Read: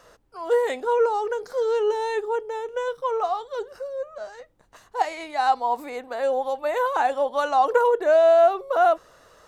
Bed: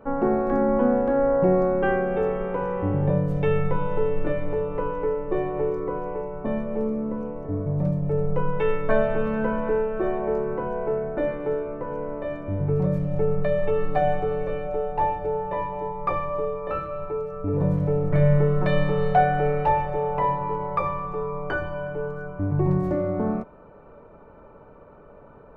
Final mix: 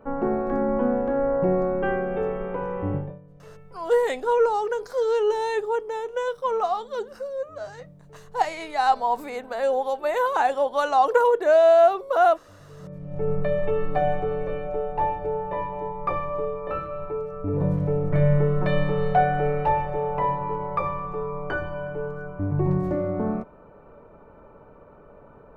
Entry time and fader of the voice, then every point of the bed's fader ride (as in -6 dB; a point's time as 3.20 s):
3.40 s, +0.5 dB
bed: 2.96 s -2.5 dB
3.20 s -25 dB
12.68 s -25 dB
13.30 s -1 dB